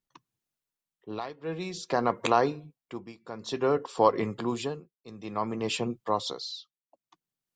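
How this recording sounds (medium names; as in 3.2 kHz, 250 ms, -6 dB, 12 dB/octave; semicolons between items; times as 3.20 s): tremolo triangle 0.55 Hz, depth 95%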